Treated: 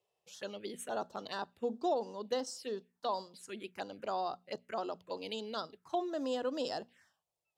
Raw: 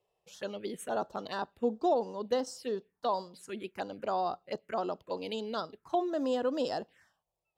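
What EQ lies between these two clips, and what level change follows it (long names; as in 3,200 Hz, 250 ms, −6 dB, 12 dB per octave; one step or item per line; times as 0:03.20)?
high-pass filter 69 Hz
parametric band 5,800 Hz +5.5 dB 2.9 octaves
mains-hum notches 60/120/180/240 Hz
−5.0 dB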